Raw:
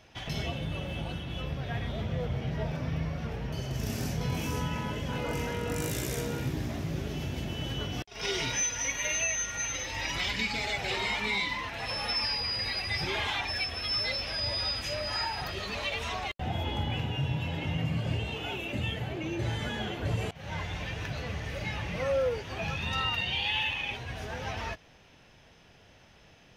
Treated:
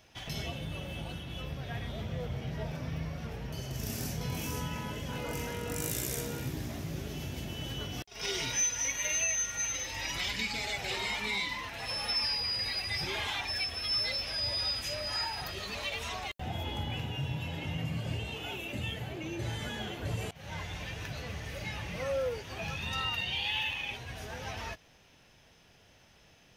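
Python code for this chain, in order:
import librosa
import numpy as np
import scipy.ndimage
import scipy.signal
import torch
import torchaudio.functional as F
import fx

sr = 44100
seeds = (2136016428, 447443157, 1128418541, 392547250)

y = fx.high_shelf(x, sr, hz=6300.0, db=11.0)
y = y * librosa.db_to_amplitude(-4.5)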